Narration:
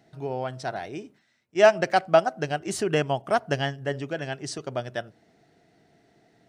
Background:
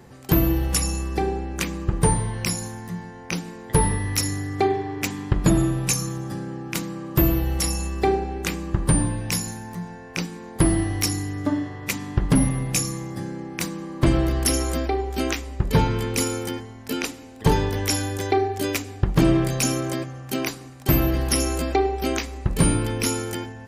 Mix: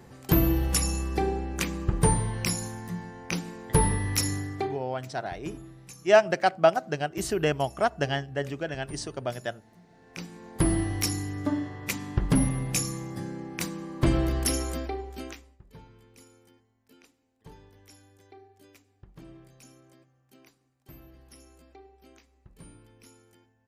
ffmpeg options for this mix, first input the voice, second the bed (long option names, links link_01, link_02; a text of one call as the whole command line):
ffmpeg -i stem1.wav -i stem2.wav -filter_complex "[0:a]adelay=4500,volume=-1.5dB[link_01];[1:a]volume=17dB,afade=type=out:start_time=4.35:duration=0.48:silence=0.0841395,afade=type=in:start_time=9.88:duration=0.85:silence=0.1,afade=type=out:start_time=14.36:duration=1.22:silence=0.0473151[link_02];[link_01][link_02]amix=inputs=2:normalize=0" out.wav